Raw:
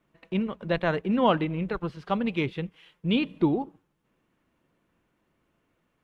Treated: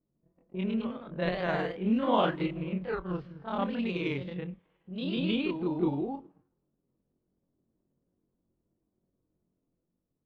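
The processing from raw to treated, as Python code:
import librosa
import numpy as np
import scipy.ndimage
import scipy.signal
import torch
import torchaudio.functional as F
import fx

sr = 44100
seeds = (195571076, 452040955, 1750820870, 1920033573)

y = fx.env_lowpass(x, sr, base_hz=410.0, full_db=-21.0)
y = fx.echo_pitch(y, sr, ms=81, semitones=1, count=2, db_per_echo=-3.0)
y = fx.stretch_grains(y, sr, factor=1.7, grain_ms=107.0)
y = F.gain(torch.from_numpy(y), -5.5).numpy()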